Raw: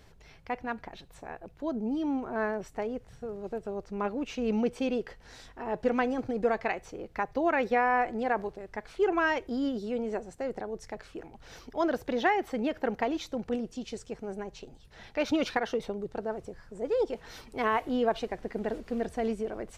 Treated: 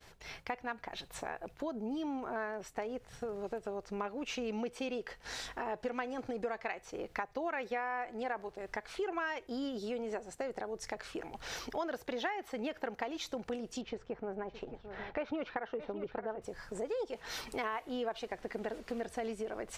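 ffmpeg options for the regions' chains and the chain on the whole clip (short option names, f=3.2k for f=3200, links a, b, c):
-filter_complex "[0:a]asettb=1/sr,asplit=3[a][b][c];[a]atrim=end=13.814[d];[b]atrim=start=13.81:end=16.42,asetpts=PTS-STARTPTS,afade=t=in:d=0.004:c=qsin,afade=t=out:st=2.606:d=0.004:c=qsin,lowpass=1.7k,aecho=1:1:617:0.158,atrim=end_sample=115101[e];[c]atrim=start=16.416[f];[d][e]acrossfade=d=0.004:c1=hsin:c2=qsin[g];[g][f]acrossfade=d=0.004:c1=qsin:c2=hsin,lowshelf=f=420:g=-10.5,acompressor=threshold=-48dB:ratio=4,agate=range=-33dB:threshold=-57dB:ratio=3:detection=peak,volume=10.5dB"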